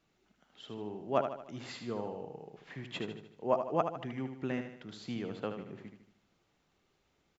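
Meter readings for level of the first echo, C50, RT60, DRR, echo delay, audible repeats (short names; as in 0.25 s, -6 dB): -7.5 dB, none, none, none, 76 ms, 5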